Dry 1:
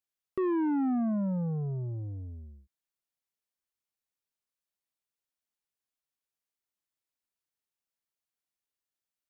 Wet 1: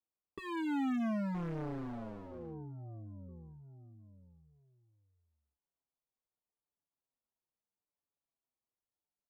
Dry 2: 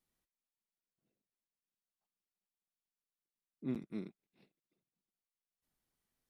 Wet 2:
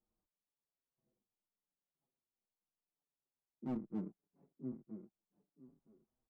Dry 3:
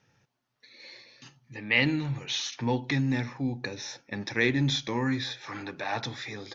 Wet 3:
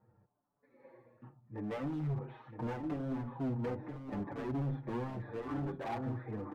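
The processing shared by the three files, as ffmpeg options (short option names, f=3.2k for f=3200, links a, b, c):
-filter_complex "[0:a]lowpass=f=1.1k:w=0.5412,lowpass=f=1.1k:w=1.3066,aecho=1:1:969|1938|2907:0.355|0.0639|0.0115,alimiter=level_in=0.5dB:limit=-24dB:level=0:latency=1:release=231,volume=-0.5dB,volume=35.5dB,asoftclip=hard,volume=-35.5dB,asplit=2[a][b];[b]adelay=6,afreqshift=-0.8[c];[a][c]amix=inputs=2:normalize=1,volume=3.5dB"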